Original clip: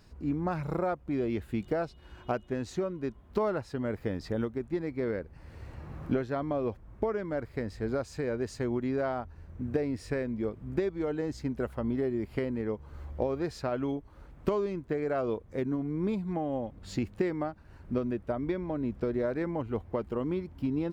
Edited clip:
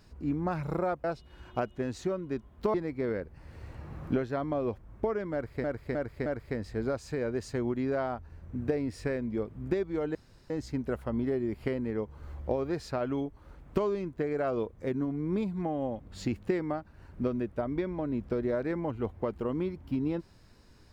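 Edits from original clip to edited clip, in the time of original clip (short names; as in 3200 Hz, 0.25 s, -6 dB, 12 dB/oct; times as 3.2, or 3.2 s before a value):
1.04–1.76 cut
3.46–4.73 cut
7.32–7.63 loop, 4 plays
11.21 insert room tone 0.35 s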